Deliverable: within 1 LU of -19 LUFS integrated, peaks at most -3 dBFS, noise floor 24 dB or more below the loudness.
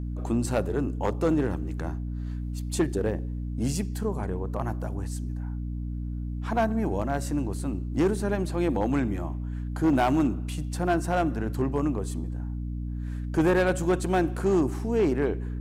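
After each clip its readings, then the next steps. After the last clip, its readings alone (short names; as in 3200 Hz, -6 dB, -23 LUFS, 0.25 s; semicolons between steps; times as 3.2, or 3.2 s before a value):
clipped 0.8%; flat tops at -17.0 dBFS; hum 60 Hz; harmonics up to 300 Hz; hum level -30 dBFS; loudness -28.0 LUFS; peak -17.0 dBFS; loudness target -19.0 LUFS
-> clip repair -17 dBFS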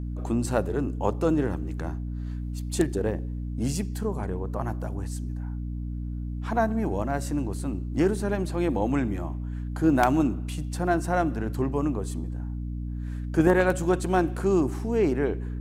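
clipped 0.0%; hum 60 Hz; harmonics up to 300 Hz; hum level -29 dBFS
-> de-hum 60 Hz, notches 5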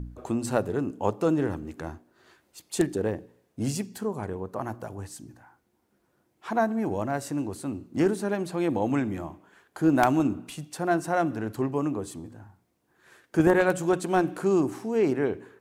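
hum none; loudness -27.5 LUFS; peak -7.5 dBFS; loudness target -19.0 LUFS
-> gain +8.5 dB; limiter -3 dBFS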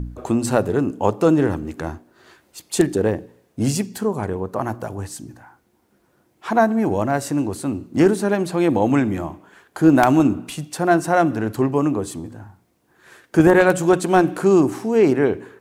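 loudness -19.0 LUFS; peak -3.0 dBFS; noise floor -63 dBFS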